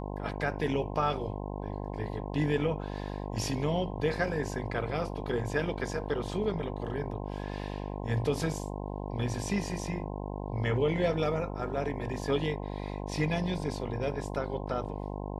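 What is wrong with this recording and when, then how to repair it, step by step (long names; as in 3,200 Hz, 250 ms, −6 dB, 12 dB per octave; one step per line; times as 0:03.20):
mains buzz 50 Hz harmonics 21 −37 dBFS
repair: hum removal 50 Hz, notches 21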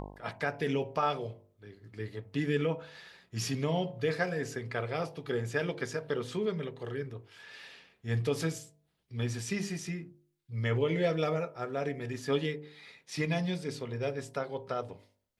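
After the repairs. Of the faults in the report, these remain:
none of them is left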